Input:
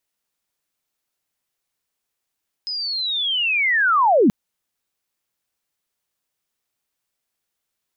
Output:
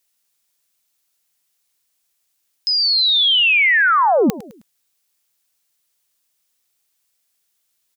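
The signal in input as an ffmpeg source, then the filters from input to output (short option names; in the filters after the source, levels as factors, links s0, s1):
-f lavfi -i "aevalsrc='pow(10,(-24+13.5*t/1.63)/20)*sin(2*PI*(5100*t-4920*t*t/(2*1.63)))':d=1.63:s=44100"
-af "highshelf=f=2500:g=11.5,aecho=1:1:105|210|315:0.141|0.0565|0.0226"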